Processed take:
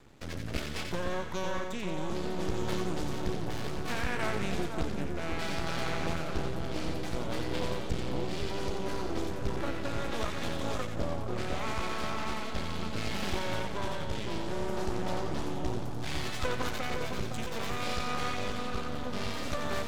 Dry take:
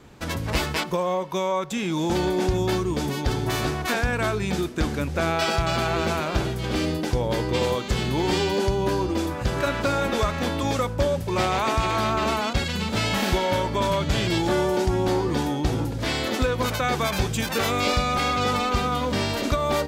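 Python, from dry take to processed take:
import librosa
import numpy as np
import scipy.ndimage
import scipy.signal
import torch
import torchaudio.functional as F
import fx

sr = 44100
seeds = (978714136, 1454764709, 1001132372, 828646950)

p1 = fx.ellip_bandstop(x, sr, low_hz=160.0, high_hz=730.0, order=3, stop_db=40, at=(15.8, 16.44))
p2 = fx.rider(p1, sr, range_db=4, speed_s=0.5)
p3 = fx.rotary(p2, sr, hz=0.65)
p4 = np.maximum(p3, 0.0)
p5 = p4 + fx.echo_split(p4, sr, split_hz=1400.0, low_ms=510, high_ms=89, feedback_pct=52, wet_db=-5, dry=0)
p6 = fx.doppler_dist(p5, sr, depth_ms=0.37)
y = p6 * librosa.db_to_amplitude(-5.5)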